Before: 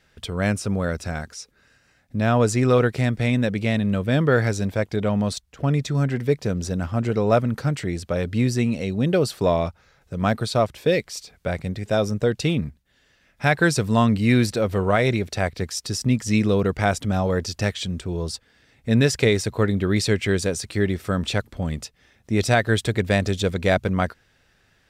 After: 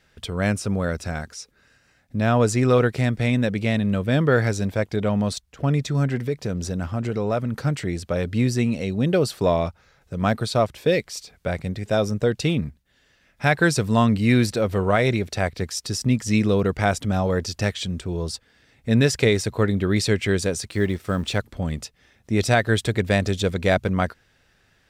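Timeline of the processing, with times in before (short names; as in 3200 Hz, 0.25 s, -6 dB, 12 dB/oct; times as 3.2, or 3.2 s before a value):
6.21–7.55 compressor 2:1, threshold -23 dBFS
20.68–21.38 G.711 law mismatch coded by A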